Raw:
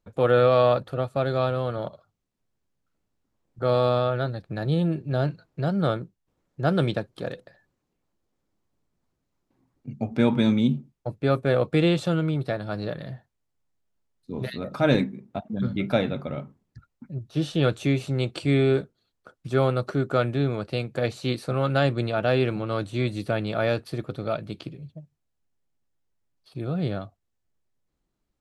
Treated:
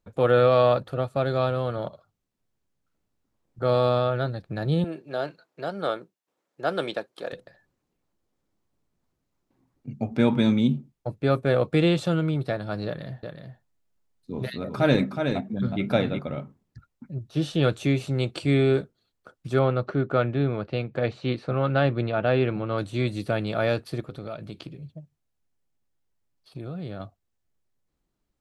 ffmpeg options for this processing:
ffmpeg -i in.wav -filter_complex "[0:a]asettb=1/sr,asplit=3[link_01][link_02][link_03];[link_01]atrim=end=4.844[link_04];[link_02]atrim=start=4.84:end=7.33,asetpts=PTS-STARTPTS,afade=type=in:duration=0.004:curve=qsin,afade=type=out:start_time=2.486:duration=0.004:curve=qsin,highpass=400[link_05];[link_03]atrim=start=7.326[link_06];[link_04][link_05]acrossfade=duration=0.004:curve1=hsin:curve2=qsin[link_07];[link_07][link_06]acrossfade=duration=0.004:curve1=qsin:curve2=hsin,asettb=1/sr,asplit=3[link_08][link_09][link_10];[link_08]atrim=end=12.864[link_11];[link_09]atrim=start=12.86:end=16.19,asetpts=PTS-STARTPTS,afade=type=in:duration=0.004:curve=qsin,afade=type=out:start_time=3.326:duration=0.004:curve=qsin,aecho=1:1:368:0.501,atrim=end_sample=146853[link_12];[link_10]atrim=start=16.186[link_13];[link_11][link_12]acrossfade=duration=0.004:curve1=hsin:curve2=qsin[link_14];[link_14][link_13]acrossfade=duration=0.004:curve1=qsin:curve2=hsin,asettb=1/sr,asplit=3[link_15][link_16][link_17];[link_15]atrim=end=19.594[link_18];[link_16]atrim=start=19.59:end=22.78,asetpts=PTS-STARTPTS,afade=type=in:duration=0.004:curve=qsin,afade=type=out:start_time=3.186:duration=0.004:curve=qsin,lowpass=3100[link_19];[link_17]atrim=start=22.776[link_20];[link_18][link_19]acrossfade=duration=0.004:curve1=hsin:curve2=qsin[link_21];[link_21][link_20]acrossfade=duration=0.004:curve1=qsin:curve2=hsin,asettb=1/sr,asplit=3[link_22][link_23][link_24];[link_22]atrim=end=24.004[link_25];[link_23]atrim=start=24:end=27,asetpts=PTS-STARTPTS,afade=type=in:duration=0.004:curve=qsin,afade=type=out:start_time=2.996:duration=0.004:curve=qsin,acompressor=threshold=-33dB:ratio=3:attack=3.2:release=140:knee=1:detection=peak[link_26];[link_24]atrim=start=26.996[link_27];[link_25][link_26]acrossfade=duration=0.004:curve1=hsin:curve2=qsin[link_28];[link_28][link_27]acrossfade=duration=0.004:curve1=qsin:curve2=hsin" out.wav

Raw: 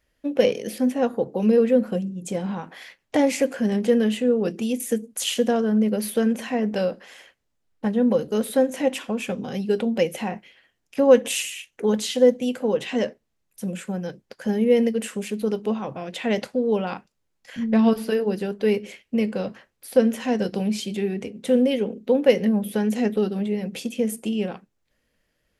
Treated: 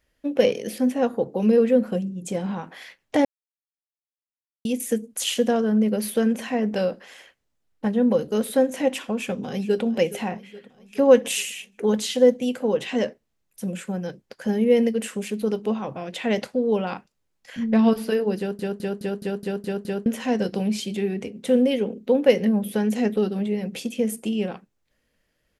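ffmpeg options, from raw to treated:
ffmpeg -i in.wav -filter_complex "[0:a]asplit=2[link_01][link_02];[link_02]afade=type=in:start_time=9.01:duration=0.01,afade=type=out:start_time=9.83:duration=0.01,aecho=0:1:420|840|1260|1680|2100|2520:0.149624|0.0897741|0.0538645|0.0323187|0.0193912|0.0116347[link_03];[link_01][link_03]amix=inputs=2:normalize=0,asplit=11[link_04][link_05][link_06][link_07][link_08][link_09][link_10][link_11][link_12][link_13][link_14];[link_04]atrim=end=3.25,asetpts=PTS-STARTPTS,afade=type=out:start_time=3.246:duration=0.004:curve=hsin[link_15];[link_05]atrim=start=3.25:end=4.65,asetpts=PTS-STARTPTS,volume=0[link_16];[link_06]atrim=start=4.65:end=18.592,asetpts=PTS-STARTPTS,afade=type=in:duration=0.004:curve=hsin[link_17];[link_07]atrim=start=18.378:end=18.592[link_18];[link_08]atrim=start=18.378:end=18.592[link_19];[link_09]atrim=start=18.378:end=18.592[link_20];[link_10]atrim=start=18.378:end=18.592[link_21];[link_11]atrim=start=18.378:end=18.592[link_22];[link_12]atrim=start=18.378:end=18.592[link_23];[link_13]atrim=start=18.378:end=18.592[link_24];[link_14]atrim=start=20.058[link_25];[link_15][link_16][link_17]concat=n=3:v=0:a=1[link_26];[link_26][link_18]acrossfade=duration=0.004:curve1=hsin:curve2=hsin[link_27];[link_27][link_19]acrossfade=duration=0.004:curve1=hsin:curve2=hsin[link_28];[link_28][link_20]acrossfade=duration=0.004:curve1=hsin:curve2=hsin[link_29];[link_29][link_21]acrossfade=duration=0.004:curve1=hsin:curve2=hsin[link_30];[link_30][link_22]acrossfade=duration=0.004:curve1=hsin:curve2=hsin[link_31];[link_31][link_23]acrossfade=duration=0.004:curve1=hsin:curve2=hsin[link_32];[link_32][link_24]acrossfade=duration=0.004:curve1=hsin:curve2=hsin[link_33];[link_33][link_25]acrossfade=duration=0.004:curve1=hsin:curve2=hsin" out.wav

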